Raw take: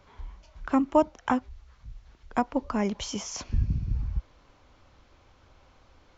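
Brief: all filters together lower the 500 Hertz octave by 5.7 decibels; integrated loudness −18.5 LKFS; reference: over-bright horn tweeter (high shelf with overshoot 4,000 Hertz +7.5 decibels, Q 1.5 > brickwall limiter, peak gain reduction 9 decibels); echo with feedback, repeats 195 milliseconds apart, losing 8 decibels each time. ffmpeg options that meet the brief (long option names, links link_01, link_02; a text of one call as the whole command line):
ffmpeg -i in.wav -af "equalizer=frequency=500:width_type=o:gain=-7.5,highshelf=frequency=4000:width_type=q:width=1.5:gain=7.5,aecho=1:1:195|390|585|780|975:0.398|0.159|0.0637|0.0255|0.0102,volume=13dB,alimiter=limit=-6.5dB:level=0:latency=1" out.wav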